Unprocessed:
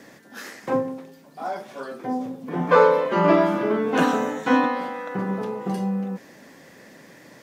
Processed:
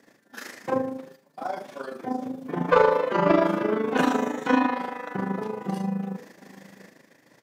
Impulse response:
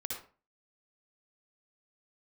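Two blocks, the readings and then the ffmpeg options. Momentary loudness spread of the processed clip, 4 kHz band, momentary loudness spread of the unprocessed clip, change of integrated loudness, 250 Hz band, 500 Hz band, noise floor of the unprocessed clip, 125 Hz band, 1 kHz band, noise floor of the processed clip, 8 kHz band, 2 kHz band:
16 LU, −2.0 dB, 17 LU, −2.5 dB, −2.5 dB, −3.0 dB, −49 dBFS, −3.0 dB, −2.5 dB, −61 dBFS, can't be measured, −2.5 dB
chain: -filter_complex "[0:a]lowshelf=frequency=68:gain=-9.5,asplit=2[link_01][link_02];[link_02]adelay=699.7,volume=-22dB,highshelf=frequency=4000:gain=-15.7[link_03];[link_01][link_03]amix=inputs=2:normalize=0,agate=range=-10dB:threshold=-46dB:ratio=16:detection=peak,tremolo=f=26:d=0.71,asoftclip=type=tanh:threshold=-8.5dB,asplit=2[link_04][link_05];[1:a]atrim=start_sample=2205[link_06];[link_05][link_06]afir=irnorm=-1:irlink=0,volume=-12dB[link_07];[link_04][link_07]amix=inputs=2:normalize=0"

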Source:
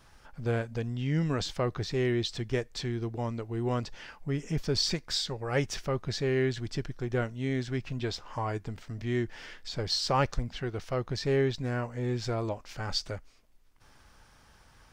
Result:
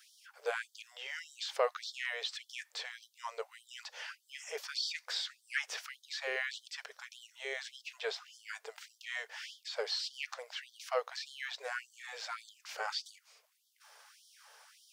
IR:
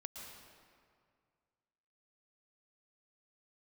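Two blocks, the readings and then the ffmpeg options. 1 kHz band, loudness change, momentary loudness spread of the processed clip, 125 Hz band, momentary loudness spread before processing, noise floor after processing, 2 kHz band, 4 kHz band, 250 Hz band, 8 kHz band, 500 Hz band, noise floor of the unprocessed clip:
−7.0 dB, −8.0 dB, 14 LU, below −40 dB, 9 LU, −74 dBFS, 0.0 dB, −4.5 dB, below −35 dB, −5.5 dB, −10.0 dB, −59 dBFS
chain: -filter_complex "[0:a]acrossover=split=3200[link_01][link_02];[link_02]acompressor=threshold=-48dB:ratio=4:attack=1:release=60[link_03];[link_01][link_03]amix=inputs=2:normalize=0,highshelf=frequency=5100:gain=5,afftfilt=real='re*gte(b*sr/1024,390*pow(3100/390,0.5+0.5*sin(2*PI*1.7*pts/sr)))':imag='im*gte(b*sr/1024,390*pow(3100/390,0.5+0.5*sin(2*PI*1.7*pts/sr)))':win_size=1024:overlap=0.75,volume=1.5dB"

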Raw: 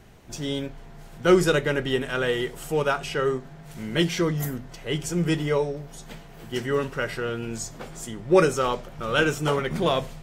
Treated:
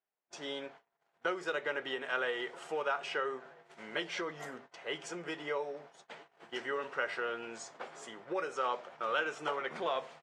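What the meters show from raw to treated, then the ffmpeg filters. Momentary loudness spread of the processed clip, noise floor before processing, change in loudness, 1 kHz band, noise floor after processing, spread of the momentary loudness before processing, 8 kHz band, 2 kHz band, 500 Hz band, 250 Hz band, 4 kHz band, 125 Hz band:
13 LU, −44 dBFS, −12.0 dB, −7.5 dB, −81 dBFS, 17 LU, −16.0 dB, −7.5 dB, −13.5 dB, −20.0 dB, −11.0 dB, −30.0 dB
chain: -filter_complex "[0:a]lowpass=frequency=9500:width=0.5412,lowpass=frequency=9500:width=1.3066,highshelf=frequency=3500:gain=-4,acompressor=threshold=-24dB:ratio=12,highpass=680,aemphasis=mode=reproduction:type=75kf,asplit=2[link_01][link_02];[link_02]adelay=1283,volume=-21dB,highshelf=frequency=4000:gain=-28.9[link_03];[link_01][link_03]amix=inputs=2:normalize=0,agate=range=-34dB:threshold=-52dB:ratio=16:detection=peak"

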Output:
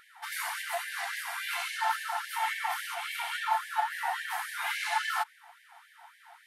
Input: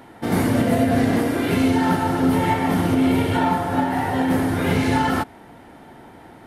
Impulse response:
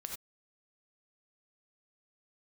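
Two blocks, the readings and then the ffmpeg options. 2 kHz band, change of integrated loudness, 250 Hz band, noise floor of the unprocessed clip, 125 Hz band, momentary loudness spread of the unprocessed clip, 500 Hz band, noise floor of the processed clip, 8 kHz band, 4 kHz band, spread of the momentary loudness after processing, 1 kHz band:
−4.0 dB, −12.5 dB, below −40 dB, −45 dBFS, below −40 dB, 3 LU, −22.0 dB, −60 dBFS, −4.0 dB, −4.0 dB, 5 LU, −8.5 dB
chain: -af "afftfilt=real='re*gte(b*sr/1024,660*pow(1600/660,0.5+0.5*sin(2*PI*3.6*pts/sr)))':imag='im*gte(b*sr/1024,660*pow(1600/660,0.5+0.5*sin(2*PI*3.6*pts/sr)))':win_size=1024:overlap=0.75,volume=-4dB"

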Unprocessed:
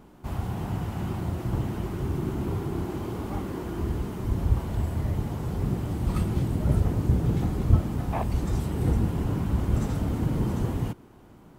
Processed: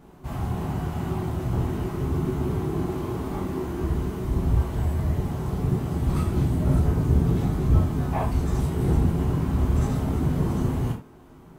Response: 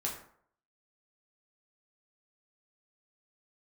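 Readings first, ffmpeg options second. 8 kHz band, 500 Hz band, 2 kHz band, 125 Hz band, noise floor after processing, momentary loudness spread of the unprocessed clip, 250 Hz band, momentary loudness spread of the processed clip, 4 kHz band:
+2.0 dB, +3.5 dB, +2.0 dB, +2.5 dB, −48 dBFS, 8 LU, +3.0 dB, 7 LU, +1.0 dB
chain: -filter_complex "[1:a]atrim=start_sample=2205,atrim=end_sample=4410[link_01];[0:a][link_01]afir=irnorm=-1:irlink=0"

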